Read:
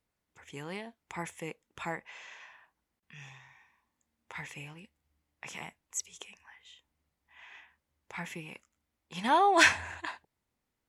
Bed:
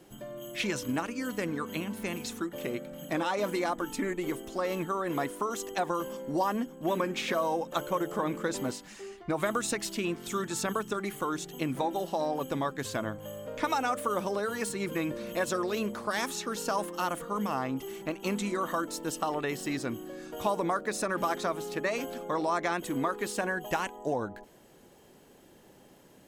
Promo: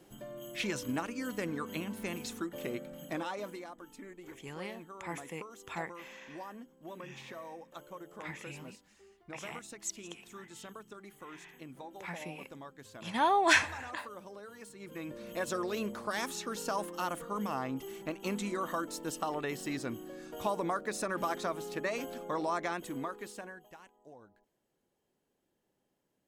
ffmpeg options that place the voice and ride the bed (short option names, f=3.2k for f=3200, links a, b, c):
-filter_complex "[0:a]adelay=3900,volume=-2.5dB[a];[1:a]volume=9.5dB,afade=t=out:st=2.89:d=0.78:silence=0.211349,afade=t=in:st=14.76:d=0.81:silence=0.223872,afade=t=out:st=22.5:d=1.21:silence=0.105925[b];[a][b]amix=inputs=2:normalize=0"